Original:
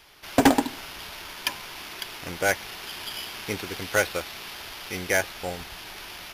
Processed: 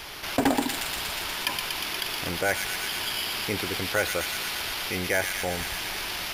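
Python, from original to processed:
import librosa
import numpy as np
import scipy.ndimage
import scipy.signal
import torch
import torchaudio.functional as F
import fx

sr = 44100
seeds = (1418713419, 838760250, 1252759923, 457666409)

p1 = fx.dynamic_eq(x, sr, hz=6100.0, q=5.0, threshold_db=-51.0, ratio=4.0, max_db=-6)
p2 = p1 + fx.echo_wet_highpass(p1, sr, ms=119, feedback_pct=77, hz=2600.0, wet_db=-6.5, dry=0)
p3 = fx.env_flatten(p2, sr, amount_pct=50)
y = p3 * 10.0 ** (-6.5 / 20.0)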